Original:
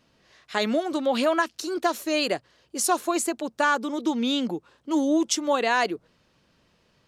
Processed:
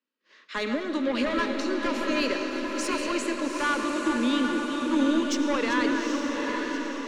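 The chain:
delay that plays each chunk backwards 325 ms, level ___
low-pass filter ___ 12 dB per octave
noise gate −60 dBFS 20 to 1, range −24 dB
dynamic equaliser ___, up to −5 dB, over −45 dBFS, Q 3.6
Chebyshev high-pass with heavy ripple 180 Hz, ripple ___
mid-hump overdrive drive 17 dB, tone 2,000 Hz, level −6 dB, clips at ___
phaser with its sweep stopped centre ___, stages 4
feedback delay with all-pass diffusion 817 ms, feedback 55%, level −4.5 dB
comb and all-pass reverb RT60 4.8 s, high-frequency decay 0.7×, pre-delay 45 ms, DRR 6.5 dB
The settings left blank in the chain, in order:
−11 dB, 7,600 Hz, 3,500 Hz, 6 dB, −11.5 dBFS, 300 Hz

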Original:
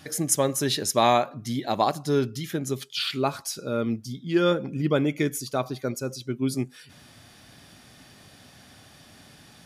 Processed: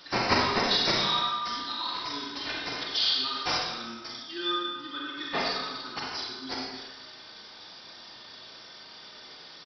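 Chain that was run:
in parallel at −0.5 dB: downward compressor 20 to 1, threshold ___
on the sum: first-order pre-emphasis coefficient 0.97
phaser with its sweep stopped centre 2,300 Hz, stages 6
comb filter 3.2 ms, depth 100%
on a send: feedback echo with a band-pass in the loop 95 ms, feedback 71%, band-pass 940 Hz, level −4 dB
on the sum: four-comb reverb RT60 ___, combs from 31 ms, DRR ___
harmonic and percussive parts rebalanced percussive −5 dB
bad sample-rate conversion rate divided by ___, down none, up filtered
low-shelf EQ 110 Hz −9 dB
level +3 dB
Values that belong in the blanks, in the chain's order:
−29 dBFS, 1.2 s, −1.5 dB, 4×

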